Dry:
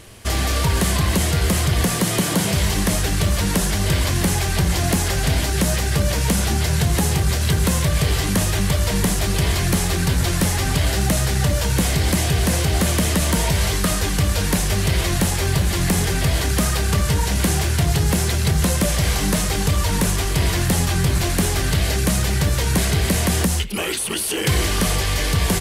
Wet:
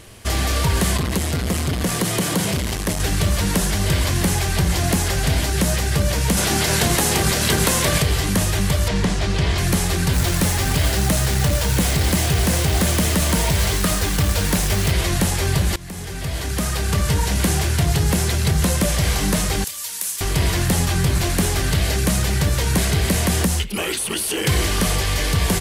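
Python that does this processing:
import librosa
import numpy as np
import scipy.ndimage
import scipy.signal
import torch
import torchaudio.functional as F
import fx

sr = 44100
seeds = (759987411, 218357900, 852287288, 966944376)

y = fx.transformer_sat(x, sr, knee_hz=260.0, at=(0.97, 3.0))
y = fx.spec_clip(y, sr, under_db=15, at=(6.36, 8.01), fade=0.02)
y = fx.lowpass(y, sr, hz=5400.0, slope=12, at=(8.88, 9.58))
y = fx.quant_companded(y, sr, bits=4, at=(10.13, 14.92))
y = fx.differentiator(y, sr, at=(19.64, 20.21))
y = fx.edit(y, sr, fx.fade_in_from(start_s=15.76, length_s=1.35, floor_db=-20.0), tone=tone)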